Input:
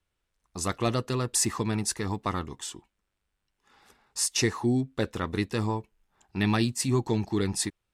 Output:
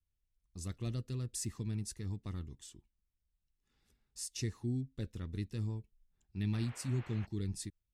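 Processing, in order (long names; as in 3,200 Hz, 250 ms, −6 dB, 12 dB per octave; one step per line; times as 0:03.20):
guitar amp tone stack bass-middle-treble 10-0-1
0:06.52–0:07.25: noise in a band 360–2,600 Hz −61 dBFS
level +5.5 dB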